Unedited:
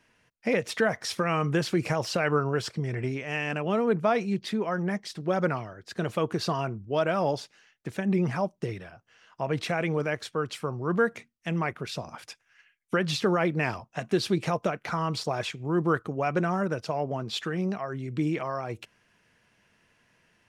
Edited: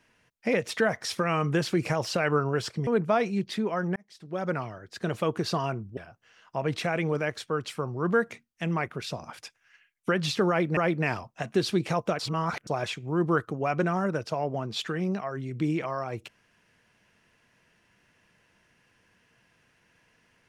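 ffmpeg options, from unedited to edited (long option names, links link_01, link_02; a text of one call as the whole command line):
ffmpeg -i in.wav -filter_complex "[0:a]asplit=7[link_01][link_02][link_03][link_04][link_05][link_06][link_07];[link_01]atrim=end=2.872[link_08];[link_02]atrim=start=3.818:end=4.91,asetpts=PTS-STARTPTS,afade=type=out:start_time=1.088:duration=0.004:curve=hsin[link_09];[link_03]atrim=start=4.91:end=6.922,asetpts=PTS-STARTPTS,afade=type=in:duration=0.79[link_10];[link_04]atrim=start=8.818:end=13.622[link_11];[link_05]atrim=start=13.338:end=14.762[link_12];[link_06]atrim=start=14.758:end=15.242,asetpts=PTS-STARTPTS,areverse[link_13];[link_07]atrim=start=15.238[link_14];[link_09][link_10]concat=n=2:v=0:a=1[link_15];[link_08][link_15]acrossfade=duration=0.004:curve1=hsin:curve2=hsin[link_16];[link_16][link_11]acrossfade=duration=0.004:curve1=hsin:curve2=hsin[link_17];[link_17][link_12]acrossfade=duration=0.004:curve1=hsin:curve2=hsin[link_18];[link_18][link_13]acrossfade=duration=0.004:curve1=hsin:curve2=hsin[link_19];[link_19][link_14]acrossfade=duration=0.004:curve1=hsin:curve2=hsin" out.wav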